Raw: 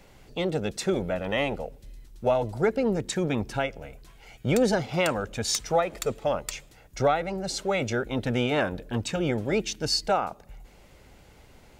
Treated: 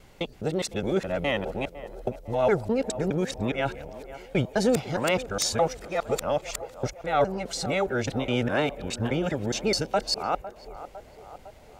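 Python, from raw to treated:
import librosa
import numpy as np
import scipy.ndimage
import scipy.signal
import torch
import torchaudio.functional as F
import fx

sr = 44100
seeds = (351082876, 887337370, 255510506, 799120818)

y = fx.local_reverse(x, sr, ms=207.0)
y = fx.echo_banded(y, sr, ms=505, feedback_pct=67, hz=690.0, wet_db=-13.5)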